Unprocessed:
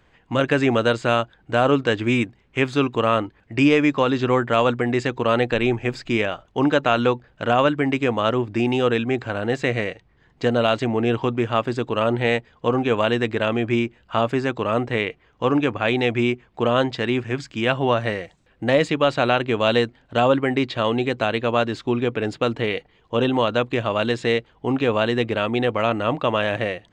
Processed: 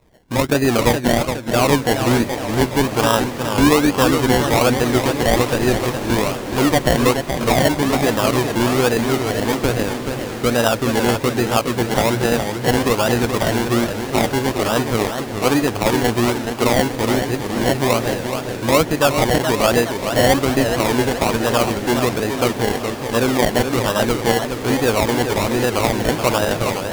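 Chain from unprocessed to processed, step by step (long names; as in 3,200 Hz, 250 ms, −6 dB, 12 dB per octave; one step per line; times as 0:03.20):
low-pass filter 3,800 Hz 24 dB per octave
sample-and-hold swept by an LFO 28×, swing 60% 1.2 Hz
on a send: feedback delay with all-pass diffusion 1,406 ms, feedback 44%, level −12.5 dB
on the sum: feedback echo with a swinging delay time 421 ms, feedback 48%, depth 184 cents, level −7 dB
level +2.5 dB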